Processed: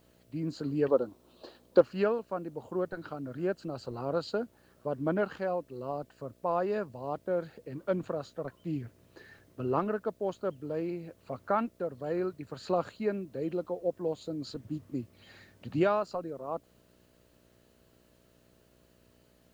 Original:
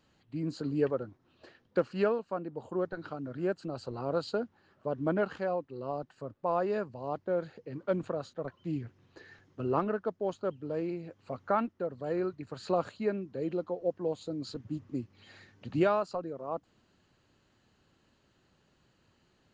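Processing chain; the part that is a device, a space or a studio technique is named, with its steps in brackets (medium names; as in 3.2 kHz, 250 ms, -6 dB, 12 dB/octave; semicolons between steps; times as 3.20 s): 0.88–1.81 s: graphic EQ 125/250/500/1000/2000/4000 Hz -9/+6/+6/+8/-10/+11 dB; video cassette with head-switching buzz (mains buzz 60 Hz, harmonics 11, -66 dBFS -1 dB/octave; white noise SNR 40 dB)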